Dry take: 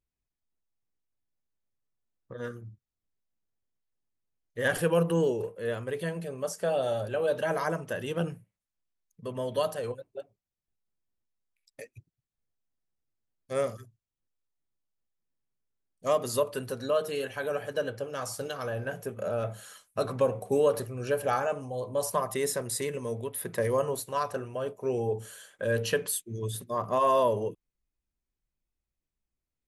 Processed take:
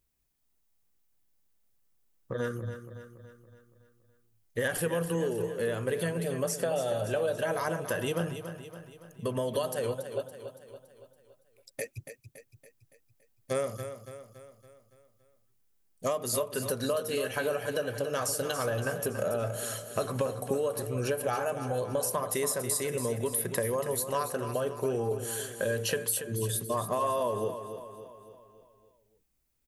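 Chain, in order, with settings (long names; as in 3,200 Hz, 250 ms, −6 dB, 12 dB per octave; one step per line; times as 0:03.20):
high-shelf EQ 8,900 Hz +10.5 dB
downward compressor, threshold −36 dBFS, peak gain reduction 16 dB
repeating echo 282 ms, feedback 52%, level −10 dB
level +8 dB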